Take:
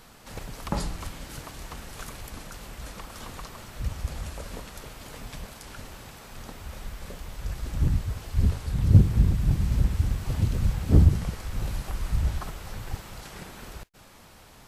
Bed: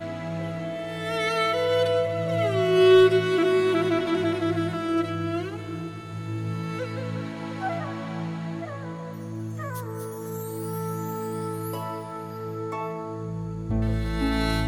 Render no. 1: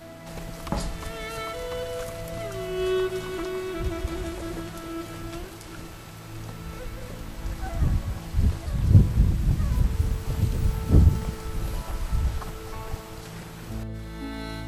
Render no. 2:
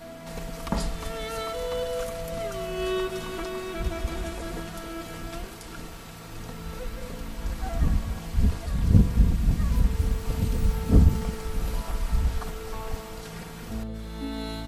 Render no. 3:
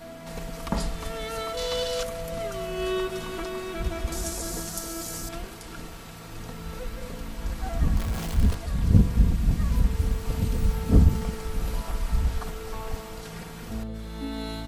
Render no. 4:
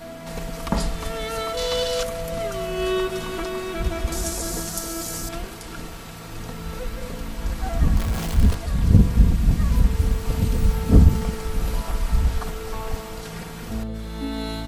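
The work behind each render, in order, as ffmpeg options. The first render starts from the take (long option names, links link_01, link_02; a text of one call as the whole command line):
ffmpeg -i in.wav -i bed.wav -filter_complex "[1:a]volume=-10dB[link_01];[0:a][link_01]amix=inputs=2:normalize=0" out.wav
ffmpeg -i in.wav -af "aecho=1:1:4.3:0.49" out.wav
ffmpeg -i in.wav -filter_complex "[0:a]asettb=1/sr,asplit=3[link_01][link_02][link_03];[link_01]atrim=end=1.574[link_04];[link_02]atrim=start=1.57:end=2.03,asetpts=PTS-STARTPTS,afade=type=in:duration=0.004:curve=qsin,afade=type=out:start_time=0.456:duration=0.004:curve=qsin,equalizer=frequency=4600:width_type=o:width=1.6:gain=12.5[link_05];[link_03]atrim=start=2.026[link_06];[link_04][link_05]acrossfade=duration=0.004:curve1=hsin:curve2=qsin[link_07];[link_07][link_06]acrossfade=duration=0.004:curve1=qsin:curve2=hsin,asettb=1/sr,asplit=3[link_08][link_09][link_10];[link_08]atrim=end=4.124[link_11];[link_09]atrim=start=4.12:end=5.29,asetpts=PTS-STARTPTS,afade=type=in:duration=0.004:curve=qsin,afade=type=out:start_time=1.166:duration=0.004:curve=qsin,highshelf=frequency=4300:width_type=q:width=1.5:gain=12[link_12];[link_10]atrim=start=5.286[link_13];[link_11][link_12]acrossfade=duration=0.004:curve1=hsin:curve2=qsin[link_14];[link_14][link_13]acrossfade=duration=0.004:curve1=qsin:curve2=hsin,asettb=1/sr,asplit=3[link_15][link_16][link_17];[link_15]atrim=end=7.974[link_18];[link_16]atrim=start=7.97:end=8.55,asetpts=PTS-STARTPTS,afade=type=in:duration=0.004:curve=qsin,afade=type=out:start_time=0.576:duration=0.004:curve=qsin,aeval=exprs='val(0)+0.5*0.0299*sgn(val(0))':channel_layout=same[link_19];[link_17]atrim=start=8.546[link_20];[link_18][link_19]acrossfade=duration=0.004:curve1=hsin:curve2=qsin[link_21];[link_21][link_20]acrossfade=duration=0.004:curve1=qsin:curve2=hsin" out.wav
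ffmpeg -i in.wav -af "volume=4.5dB,alimiter=limit=-2dB:level=0:latency=1" out.wav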